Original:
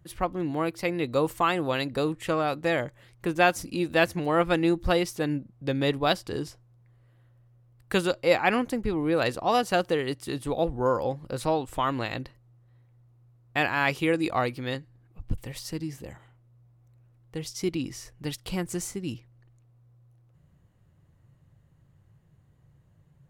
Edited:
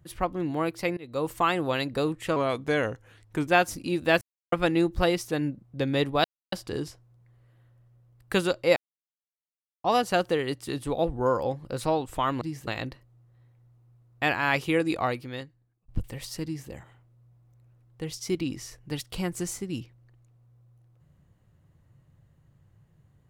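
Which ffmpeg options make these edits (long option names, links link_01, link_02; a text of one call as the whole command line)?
ffmpeg -i in.wav -filter_complex "[0:a]asplit=12[link_01][link_02][link_03][link_04][link_05][link_06][link_07][link_08][link_09][link_10][link_11][link_12];[link_01]atrim=end=0.97,asetpts=PTS-STARTPTS,afade=type=out:start_time=0.966:duration=0.004:curve=hsin:silence=0.0630957[link_13];[link_02]atrim=start=0.97:end=2.364,asetpts=PTS-STARTPTS,afade=type=in:duration=0.41:silence=0.0630957[link_14];[link_03]atrim=start=2.36:end=3.35,asetpts=PTS-STARTPTS,asetrate=39249,aresample=44100,atrim=end_sample=49055,asetpts=PTS-STARTPTS[link_15];[link_04]atrim=start=3.346:end=4.09,asetpts=PTS-STARTPTS,afade=type=out:start_time=0.74:duration=0.004:curve=hsin[link_16];[link_05]atrim=start=4.09:end=4.4,asetpts=PTS-STARTPTS,volume=0[link_17];[link_06]atrim=start=4.4:end=6.12,asetpts=PTS-STARTPTS,afade=type=in:duration=0.004:curve=hsin,afade=type=out:start_time=1.716:duration=0.004:curve=hsin,apad=pad_dur=0.28[link_18];[link_07]atrim=start=6.12:end=8.36,asetpts=PTS-STARTPTS,afade=type=in:duration=0.004:curve=hsin,afade=type=out:start_time=2.236:duration=0.004:curve=hsin[link_19];[link_08]atrim=start=8.36:end=9.44,asetpts=PTS-STARTPTS,volume=0[link_20];[link_09]atrim=start=9.44:end=12.012,asetpts=PTS-STARTPTS,afade=type=in:duration=0.004:curve=hsin[link_21];[link_10]atrim=start=15.778:end=16.042[link_22];[link_11]atrim=start=12.008:end=15.22,asetpts=PTS-STARTPTS,afade=type=out:start_time=2.262:duration=0.95[link_23];[link_12]atrim=start=15.22,asetpts=PTS-STARTPTS,afade=type=in:duration=0.004:curve=hsin[link_24];[link_13][link_14]concat=n=2:v=0:a=1[link_25];[link_25][link_15]acrossfade=duration=0.004:curve1=hsin:curve2=hsin[link_26];[link_16][link_17][link_18][link_19][link_20][link_21]concat=n=6:v=0:a=1[link_27];[link_26][link_27]acrossfade=duration=0.004:curve1=hsin:curve2=hsin[link_28];[link_28][link_22]acrossfade=duration=0.004:curve1=hsin:curve2=hsin[link_29];[link_23][link_24]concat=n=2:v=0:a=1[link_30];[link_29][link_30]acrossfade=duration=0.004:curve1=hsin:curve2=hsin" out.wav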